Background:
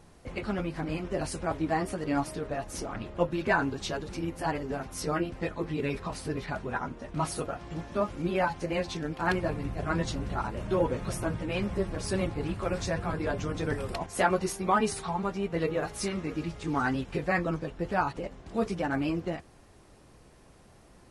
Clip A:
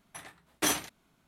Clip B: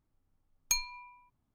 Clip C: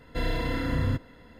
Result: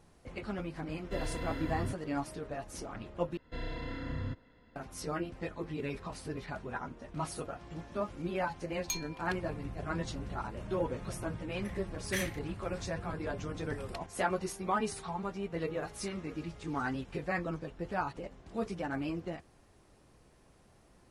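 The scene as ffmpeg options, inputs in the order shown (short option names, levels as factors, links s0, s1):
-filter_complex "[3:a]asplit=2[s0][s1];[0:a]volume=0.473[s2];[s1]lowpass=5800[s3];[1:a]highpass=f=1900:t=q:w=5.1[s4];[s2]asplit=2[s5][s6];[s5]atrim=end=3.374[s7];[s3]atrim=end=1.39,asetpts=PTS-STARTPTS,volume=0.282[s8];[s6]atrim=start=4.756[s9];[s0]atrim=end=1.39,asetpts=PTS-STARTPTS,volume=0.316,afade=t=in:d=0.004:c=hsin,afade=t=out:st=1.386:d=0.004:c=hsin,adelay=960[s10];[2:a]atrim=end=1.54,asetpts=PTS-STARTPTS,volume=0.473,afade=t=in:d=0.004:c=hsin,afade=t=out:st=1.536:d=0.004:c=hsin,adelay=8190[s11];[s4]atrim=end=1.27,asetpts=PTS-STARTPTS,volume=0.237,afade=t=in:d=0.004:c=hsin,afade=t=out:st=1.266:d=0.004:c=hsin,adelay=11500[s12];[s7][s8]acrossfade=d=0.004:c1=hsin:c2=hsin[s13];[s13][s9]acrossfade=d=0.004:c1=hsin:c2=hsin[s14];[s14][s10][s11][s12]amix=inputs=4:normalize=0"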